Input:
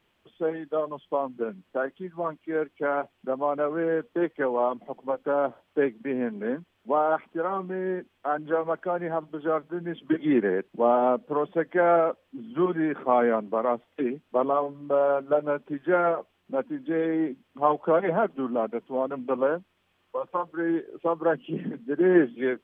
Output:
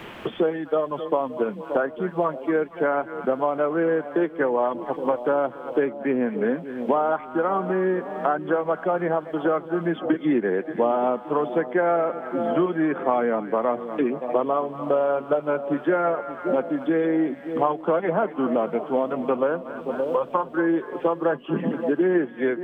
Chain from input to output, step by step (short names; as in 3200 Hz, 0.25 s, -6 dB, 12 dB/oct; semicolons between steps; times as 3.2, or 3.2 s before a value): split-band echo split 810 Hz, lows 0.573 s, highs 0.234 s, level -15.5 dB; three-band squash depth 100%; gain +2 dB